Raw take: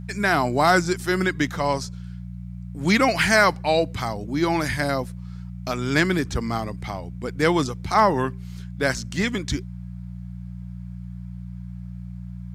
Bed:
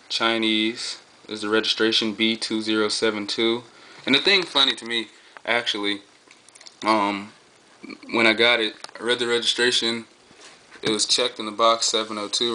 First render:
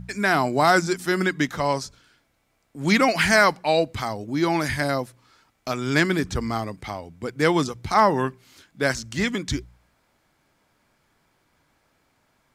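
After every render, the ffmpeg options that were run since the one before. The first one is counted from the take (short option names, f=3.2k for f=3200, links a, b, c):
-af "bandreject=f=60:t=h:w=4,bandreject=f=120:t=h:w=4,bandreject=f=180:t=h:w=4"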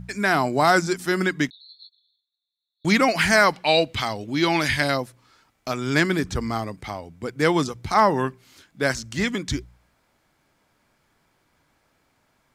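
-filter_complex "[0:a]asettb=1/sr,asplit=3[a][b][c];[a]atrim=end=1.504[d];[b]atrim=start=1.5:end=2.85,asetpts=PTS-STARTPTS,afade=t=in:d=0.004:c=qsin,afade=t=out:st=1.346:d=0.004:c=qsin,asuperpass=centerf=3900:order=20:qfactor=3.9[e];[c]atrim=start=2.846[f];[d][e]acrossfade=d=0.004:c1=hsin:c2=qsin[g];[g][f]acrossfade=d=0.004:c1=qsin:c2=hsin,asettb=1/sr,asplit=3[h][i][j];[h]atrim=end=3.534[k];[i]atrim=start=3.53:end=4.97,asetpts=PTS-STARTPTS,afade=t=in:d=0.004:c=qsin,afade=t=out:st=1.436:d=0.004:c=qsin,equalizer=f=3.1k:w=1.1:g=10.5[l];[j]atrim=start=4.966[m];[k][l]acrossfade=d=0.004:c1=hsin:c2=qsin[n];[n][m]acrossfade=d=0.004:c1=qsin:c2=hsin"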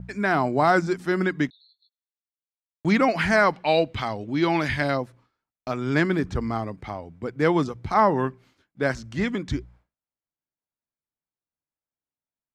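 -af "lowpass=f=1.5k:p=1,agate=range=-33dB:threshold=-47dB:ratio=3:detection=peak"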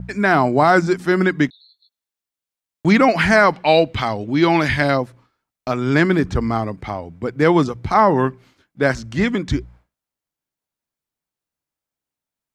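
-af "volume=7dB,alimiter=limit=-3dB:level=0:latency=1"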